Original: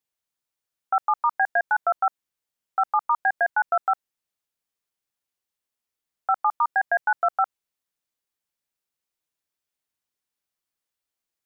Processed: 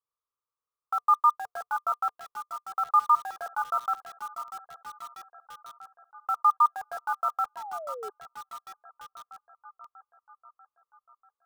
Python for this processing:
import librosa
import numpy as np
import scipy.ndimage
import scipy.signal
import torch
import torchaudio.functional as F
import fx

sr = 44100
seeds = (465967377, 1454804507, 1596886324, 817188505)

p1 = fx.curve_eq(x, sr, hz=(110.0, 230.0, 450.0, 720.0, 1200.0, 1800.0, 2900.0), db=(0, -23, 4, -6, 14, -20, -14))
p2 = fx.echo_thinned(p1, sr, ms=641, feedback_pct=56, hz=150.0, wet_db=-12.5)
p3 = (np.mod(10.0 ** (33.0 / 20.0) * p2 + 1.0, 2.0) - 1.0) / 10.0 ** (33.0 / 20.0)
p4 = p2 + (p3 * librosa.db_to_amplitude(-6.0))
p5 = fx.spec_paint(p4, sr, seeds[0], shape='fall', start_s=7.56, length_s=0.54, low_hz=400.0, high_hz=980.0, level_db=-30.0)
y = p5 * librosa.db_to_amplitude(-9.0)